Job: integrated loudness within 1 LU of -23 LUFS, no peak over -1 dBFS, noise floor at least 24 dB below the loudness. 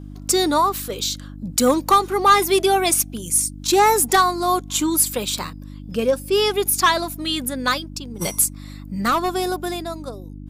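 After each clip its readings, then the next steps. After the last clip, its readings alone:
hum 50 Hz; harmonics up to 300 Hz; hum level -33 dBFS; loudness -19.5 LUFS; peak -7.0 dBFS; loudness target -23.0 LUFS
-> de-hum 50 Hz, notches 6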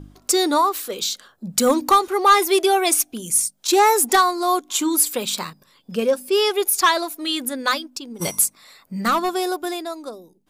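hum none; loudness -19.5 LUFS; peak -7.0 dBFS; loudness target -23.0 LUFS
-> gain -3.5 dB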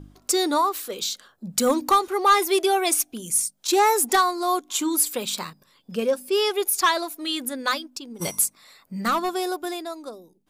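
loudness -23.0 LUFS; peak -10.5 dBFS; noise floor -63 dBFS

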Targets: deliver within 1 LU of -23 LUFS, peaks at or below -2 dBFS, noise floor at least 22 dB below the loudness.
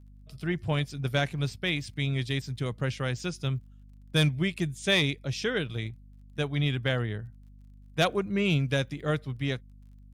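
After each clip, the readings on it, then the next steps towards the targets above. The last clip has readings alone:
ticks 21/s; hum 50 Hz; harmonics up to 250 Hz; hum level -48 dBFS; loudness -29.5 LUFS; peak -12.5 dBFS; loudness target -23.0 LUFS
-> de-click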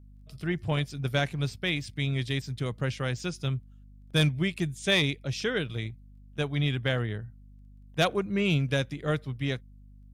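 ticks 0/s; hum 50 Hz; harmonics up to 250 Hz; hum level -48 dBFS
-> de-hum 50 Hz, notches 5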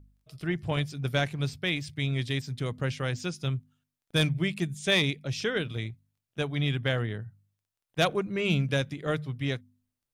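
hum none; loudness -30.0 LUFS; peak -12.0 dBFS; loudness target -23.0 LUFS
-> gain +7 dB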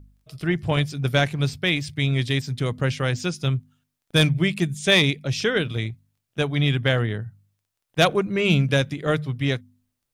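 loudness -23.0 LUFS; peak -5.0 dBFS; noise floor -80 dBFS

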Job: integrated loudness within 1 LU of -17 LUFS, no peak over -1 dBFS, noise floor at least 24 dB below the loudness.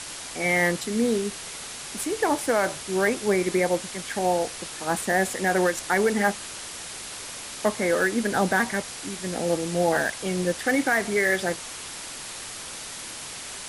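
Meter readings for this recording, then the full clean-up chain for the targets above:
noise floor -38 dBFS; noise floor target -50 dBFS; loudness -25.5 LUFS; peak -10.0 dBFS; loudness target -17.0 LUFS
-> noise print and reduce 12 dB; gain +8.5 dB

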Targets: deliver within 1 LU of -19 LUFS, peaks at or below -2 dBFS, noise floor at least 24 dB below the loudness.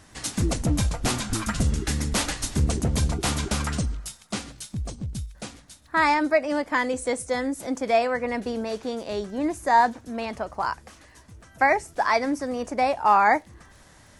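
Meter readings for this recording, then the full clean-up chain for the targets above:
ticks 24/s; loudness -25.0 LUFS; peak -7.0 dBFS; loudness target -19.0 LUFS
-> de-click; gain +6 dB; limiter -2 dBFS

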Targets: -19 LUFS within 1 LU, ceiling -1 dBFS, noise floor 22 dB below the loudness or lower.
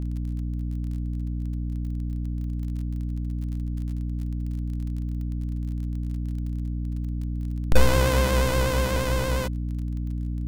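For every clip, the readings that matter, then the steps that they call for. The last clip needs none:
ticks 29/s; hum 60 Hz; harmonics up to 300 Hz; hum level -26 dBFS; loudness -28.0 LUFS; peak -3.5 dBFS; loudness target -19.0 LUFS
-> de-click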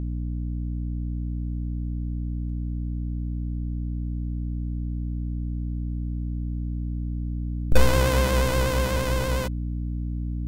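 ticks 0.095/s; hum 60 Hz; harmonics up to 300 Hz; hum level -26 dBFS
-> notches 60/120/180/240/300 Hz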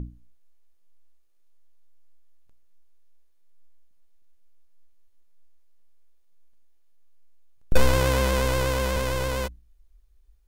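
hum none; loudness -25.0 LUFS; peak -4.0 dBFS; loudness target -19.0 LUFS
-> gain +6 dB; limiter -1 dBFS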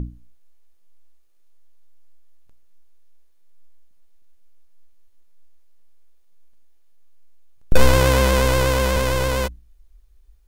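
loudness -19.0 LUFS; peak -1.0 dBFS; noise floor -51 dBFS

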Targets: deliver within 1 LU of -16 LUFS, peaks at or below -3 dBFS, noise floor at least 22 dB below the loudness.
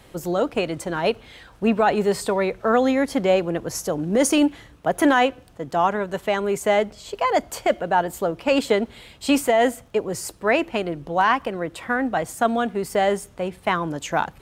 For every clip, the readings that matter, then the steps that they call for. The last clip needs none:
ticks 19/s; loudness -22.5 LUFS; peak -5.5 dBFS; loudness target -16.0 LUFS
-> de-click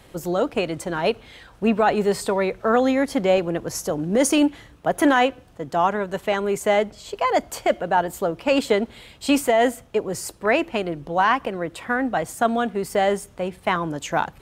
ticks 0/s; loudness -22.5 LUFS; peak -5.5 dBFS; loudness target -16.0 LUFS
-> gain +6.5 dB; limiter -3 dBFS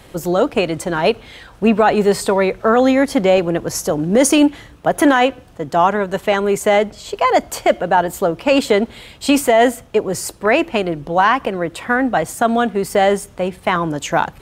loudness -16.5 LUFS; peak -3.0 dBFS; noise floor -44 dBFS

